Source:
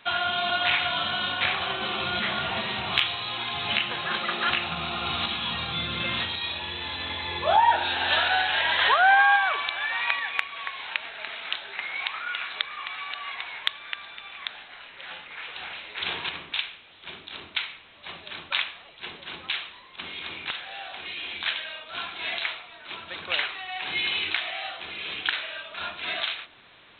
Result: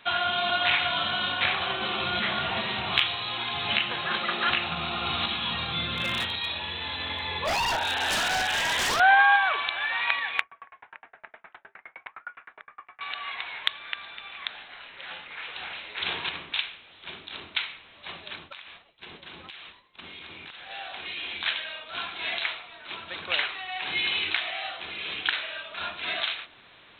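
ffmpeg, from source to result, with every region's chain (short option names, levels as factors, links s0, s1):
-filter_complex "[0:a]asettb=1/sr,asplit=3[s0][s1][s2];[s0]atrim=end=5.894[s3];[s1]atrim=start=5.89:end=9,asetpts=PTS-STARTPTS,afade=t=in:d=0.004:c=qsin,afade=t=out:st=3.106:d=0.004:c=qsin,bandreject=f=50:t=h:w=6,bandreject=f=100:t=h:w=6,bandreject=f=150:t=h:w=6,bandreject=f=200:t=h:w=6,bandreject=f=250:t=h:w=6,bandreject=f=300:t=h:w=6,bandreject=f=350:t=h:w=6,aeval=exprs='0.0891*(abs(mod(val(0)/0.0891+3,4)-2)-1)':c=same[s4];[s2]atrim=start=8.996[s5];[s3][s4]acrossfade=d=0.004:c1=hsin:c2=qsin[s6];[s6][s5]acrossfade=d=0.004:c1=qsin:c2=hsin,asettb=1/sr,asplit=3[s7][s8][s9];[s7]atrim=end=10.414[s10];[s8]atrim=start=10.41:end=13.01,asetpts=PTS-STARTPTS,afade=t=in:d=0.004:c=qsin,afade=t=out:st=2.596:d=0.004:c=qsin,lowpass=f=1800:w=0.5412,lowpass=f=1800:w=1.3066,aeval=exprs='val(0)*pow(10,-39*if(lt(mod(9.7*n/s,1),2*abs(9.7)/1000),1-mod(9.7*n/s,1)/(2*abs(9.7)/1000),(mod(9.7*n/s,1)-2*abs(9.7)/1000)/(1-2*abs(9.7)/1000))/20)':c=same[s11];[s9]atrim=start=13.006[s12];[s10][s11]acrossfade=d=0.004:c1=hsin:c2=qsin[s13];[s13][s12]acrossfade=d=0.004:c1=qsin:c2=hsin,asettb=1/sr,asplit=3[s14][s15][s16];[s14]atrim=end=18.354[s17];[s15]atrim=start=18.35:end=20.7,asetpts=PTS-STARTPTS,afade=t=in:d=0.004:c=qsin,afade=t=out:st=2.346:d=0.004:c=qsin,agate=range=0.0224:threshold=0.00891:ratio=3:release=100:detection=peak,lowshelf=f=480:g=4.5,acompressor=threshold=0.0112:ratio=12:attack=3.2:release=140:knee=1:detection=peak[s18];[s16]atrim=start=20.696[s19];[s17][s18]acrossfade=d=0.004:c1=hsin:c2=qsin[s20];[s20][s19]acrossfade=d=0.004:c1=qsin:c2=hsin"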